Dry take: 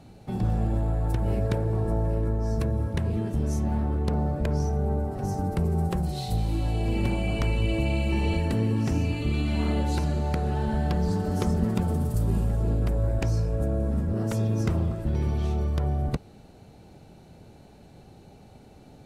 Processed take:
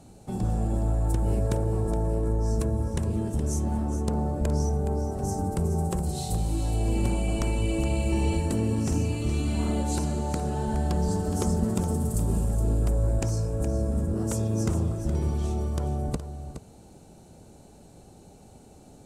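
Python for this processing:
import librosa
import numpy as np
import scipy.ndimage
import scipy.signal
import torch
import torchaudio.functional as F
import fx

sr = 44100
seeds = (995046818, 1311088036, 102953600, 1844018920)

y = fx.graphic_eq_10(x, sr, hz=(125, 2000, 4000, 8000), db=(-3, -6, -4, 12))
y = y + 10.0 ** (-10.5 / 20.0) * np.pad(y, (int(418 * sr / 1000.0), 0))[:len(y)]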